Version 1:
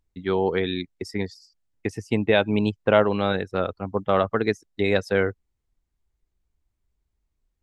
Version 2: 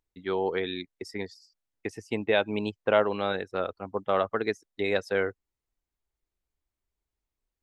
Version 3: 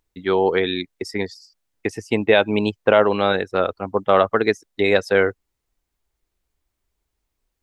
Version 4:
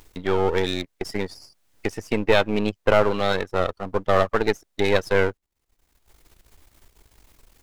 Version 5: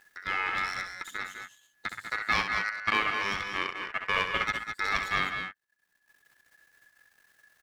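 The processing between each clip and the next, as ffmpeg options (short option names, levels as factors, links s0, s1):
-af "bass=f=250:g=-9,treble=f=4000:g=-1,volume=0.631"
-af "alimiter=level_in=3.55:limit=0.891:release=50:level=0:latency=1,volume=0.891"
-filter_complex "[0:a]aeval=exprs='if(lt(val(0),0),0.251*val(0),val(0))':c=same,asplit=2[s0][s1];[s1]acompressor=mode=upward:threshold=0.0891:ratio=2.5,volume=0.708[s2];[s0][s2]amix=inputs=2:normalize=0,volume=0.631"
-af "aeval=exprs='if(lt(val(0),0),0.708*val(0),val(0))':c=same,aeval=exprs='val(0)*sin(2*PI*1700*n/s)':c=same,aecho=1:1:65|196|212:0.398|0.282|0.376,volume=0.447"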